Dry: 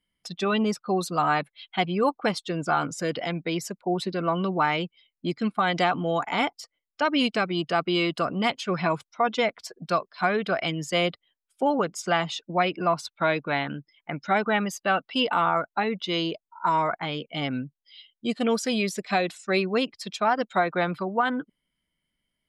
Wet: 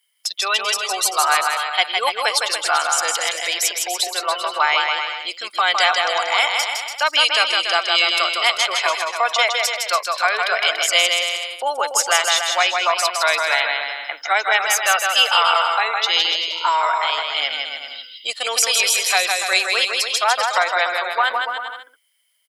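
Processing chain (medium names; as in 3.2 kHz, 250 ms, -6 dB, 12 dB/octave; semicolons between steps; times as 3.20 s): high-pass 520 Hz 24 dB/octave; tilt EQ +4.5 dB/octave; on a send: bouncing-ball echo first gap 160 ms, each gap 0.8×, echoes 5; on the sum: trim +5 dB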